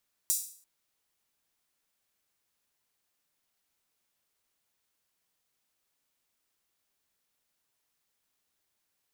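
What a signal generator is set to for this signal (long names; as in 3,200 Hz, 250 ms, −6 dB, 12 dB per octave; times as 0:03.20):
open synth hi-hat length 0.34 s, high-pass 7,100 Hz, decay 0.49 s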